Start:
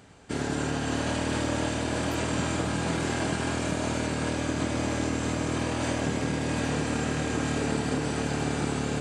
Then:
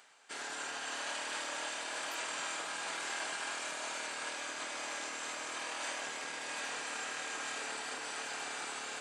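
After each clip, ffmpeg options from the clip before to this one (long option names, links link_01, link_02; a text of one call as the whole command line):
ffmpeg -i in.wav -af "areverse,acompressor=mode=upward:threshold=-39dB:ratio=2.5,areverse,highpass=1000,volume=-4dB" out.wav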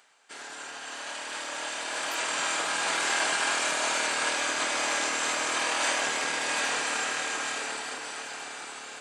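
ffmpeg -i in.wav -af "dynaudnorm=framelen=330:gausssize=13:maxgain=12.5dB" out.wav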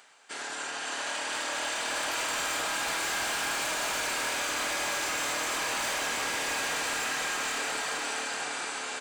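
ffmpeg -i in.wav -af "asoftclip=type=hard:threshold=-29.5dB,aecho=1:1:480:0.447,acompressor=threshold=-33dB:ratio=6,volume=4.5dB" out.wav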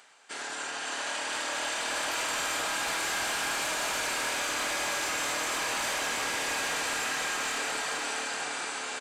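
ffmpeg -i in.wav -af "aresample=32000,aresample=44100" out.wav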